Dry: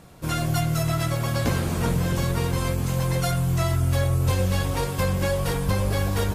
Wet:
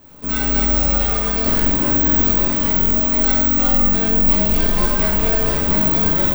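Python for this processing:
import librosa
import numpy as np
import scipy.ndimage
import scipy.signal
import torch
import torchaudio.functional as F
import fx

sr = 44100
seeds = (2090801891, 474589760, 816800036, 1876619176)

y = (np.kron(scipy.signal.resample_poly(x, 1, 2), np.eye(2)[0]) * 2)[:len(x)]
y = y * np.sin(2.0 * np.pi * 110.0 * np.arange(len(y)) / sr)
y = fx.rev_shimmer(y, sr, seeds[0], rt60_s=1.3, semitones=7, shimmer_db=-8, drr_db=-5.0)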